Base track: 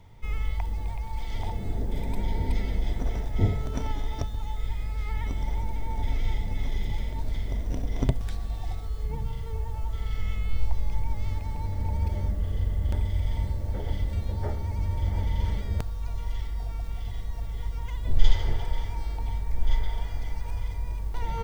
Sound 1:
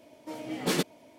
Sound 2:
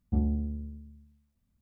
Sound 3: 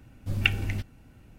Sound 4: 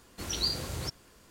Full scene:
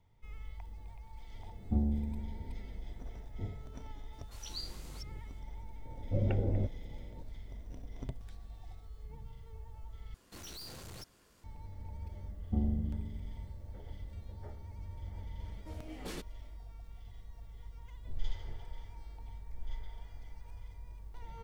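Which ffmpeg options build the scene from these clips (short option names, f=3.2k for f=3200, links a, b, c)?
-filter_complex "[2:a]asplit=2[a][b];[4:a]asplit=2[c][d];[0:a]volume=-17dB[e];[c]acrossover=split=490|1700[f][g][h];[h]adelay=30[i];[f]adelay=200[j];[j][g][i]amix=inputs=3:normalize=0[k];[3:a]lowpass=f=540:t=q:w=4.8[l];[d]aeval=exprs='(tanh(112*val(0)+0.6)-tanh(0.6))/112':c=same[m];[b]asplit=5[n][o][p][q][r];[o]adelay=104,afreqshift=-120,volume=-8dB[s];[p]adelay=208,afreqshift=-240,volume=-16.4dB[t];[q]adelay=312,afreqshift=-360,volume=-24.8dB[u];[r]adelay=416,afreqshift=-480,volume=-33.2dB[v];[n][s][t][u][v]amix=inputs=5:normalize=0[w];[1:a]alimiter=limit=-20.5dB:level=0:latency=1:release=200[x];[e]asplit=2[y][z];[y]atrim=end=10.144[aa];[m]atrim=end=1.3,asetpts=PTS-STARTPTS,volume=-4.5dB[ab];[z]atrim=start=11.436[ac];[a]atrim=end=1.61,asetpts=PTS-STARTPTS,volume=-3dB,afade=t=in:d=0.004:c=hsin,afade=t=out:st=1.606:d=0.004:c=hsin,adelay=1590[ad];[k]atrim=end=1.3,asetpts=PTS-STARTPTS,volume=-12.5dB,afade=t=in:d=0.004:c=hsin,afade=t=out:st=1.296:d=0.004:c=hsin,adelay=4100[ae];[l]atrim=end=1.38,asetpts=PTS-STARTPTS,volume=-1.5dB,afade=t=in:d=0.004:c=hsin,afade=t=out:st=1.376:d=0.004:c=hsin,adelay=257985S[af];[w]atrim=end=1.61,asetpts=PTS-STARTPTS,volume=-4.5dB,afade=t=in:d=0.004:c=hsin,afade=t=out:st=1.606:d=0.004:c=hsin,adelay=12400[ag];[x]atrim=end=1.18,asetpts=PTS-STARTPTS,volume=-12dB,afade=t=in:d=0.004:c=hsin,afade=t=out:st=1.176:d=0.004:c=hsin,adelay=15390[ah];[aa][ab]acrossfade=d=0.004:c1=hsin:c2=hsin[ai];[ai][ac]acrossfade=d=0.004:c1=hsin:c2=hsin[aj];[aj][ad][ae][af][ag][ah]amix=inputs=6:normalize=0"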